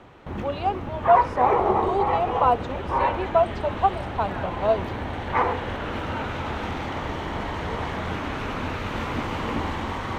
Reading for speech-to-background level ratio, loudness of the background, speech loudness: 2.5 dB, -27.5 LUFS, -25.0 LUFS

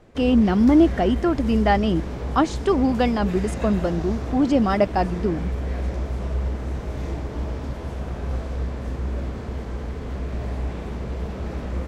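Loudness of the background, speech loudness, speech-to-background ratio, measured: -30.0 LUFS, -21.0 LUFS, 9.0 dB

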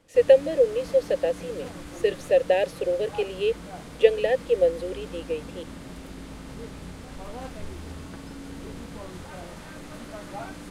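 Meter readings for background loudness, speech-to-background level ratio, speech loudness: -40.5 LUFS, 16.5 dB, -24.0 LUFS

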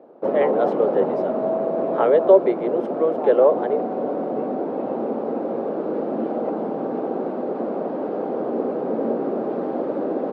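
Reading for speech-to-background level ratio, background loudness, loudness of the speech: 5.0 dB, -25.0 LUFS, -20.0 LUFS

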